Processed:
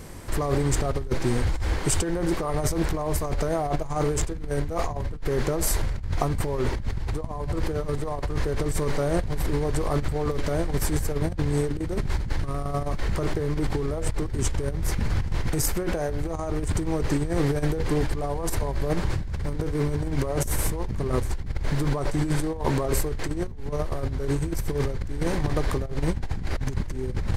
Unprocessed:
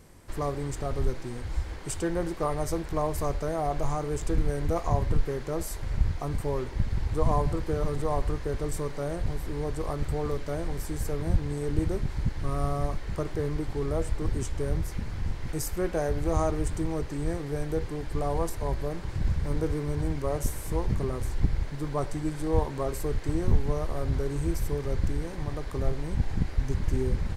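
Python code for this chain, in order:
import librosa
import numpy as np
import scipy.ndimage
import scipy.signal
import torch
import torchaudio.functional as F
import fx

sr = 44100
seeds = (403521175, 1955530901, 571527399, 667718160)

y = fx.over_compress(x, sr, threshold_db=-33.0, ratio=-1.0)
y = y * 10.0 ** (7.5 / 20.0)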